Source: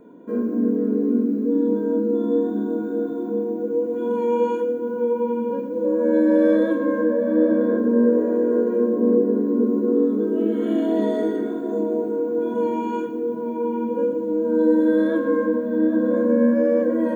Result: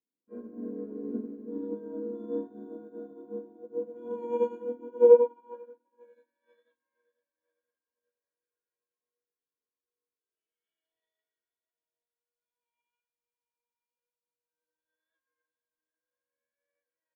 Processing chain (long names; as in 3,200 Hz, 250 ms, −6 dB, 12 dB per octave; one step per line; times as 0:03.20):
dynamic equaliser 670 Hz, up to +6 dB, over −34 dBFS, Q 0.9
high-pass filter sweep 90 Hz → 2,500 Hz, 0:04.26–0:06.01
repeating echo 489 ms, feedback 57%, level −11.5 dB
on a send at −13 dB: convolution reverb RT60 0.85 s, pre-delay 6 ms
on the sum: expander for the loud parts 2.5 to 1, over −40 dBFS
level −4 dB